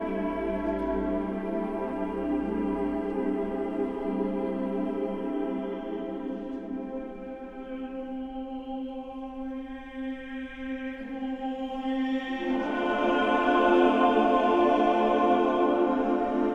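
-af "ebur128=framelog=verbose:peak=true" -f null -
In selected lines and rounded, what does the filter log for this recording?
Integrated loudness:
  I:         -28.1 LUFS
  Threshold: -38.3 LUFS
Loudness range:
  LRA:        13.5 LU
  Threshold: -48.9 LUFS
  LRA low:   -36.8 LUFS
  LRA high:  -23.3 LUFS
True peak:
  Peak:       -9.2 dBFS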